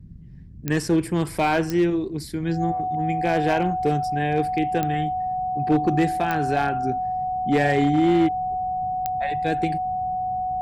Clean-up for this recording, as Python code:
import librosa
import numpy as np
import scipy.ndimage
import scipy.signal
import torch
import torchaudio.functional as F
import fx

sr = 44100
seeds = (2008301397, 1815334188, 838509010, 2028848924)

y = fx.fix_declip(x, sr, threshold_db=-13.0)
y = fx.fix_declick_ar(y, sr, threshold=10.0)
y = fx.notch(y, sr, hz=740.0, q=30.0)
y = fx.noise_reduce(y, sr, print_start_s=0.06, print_end_s=0.56, reduce_db=30.0)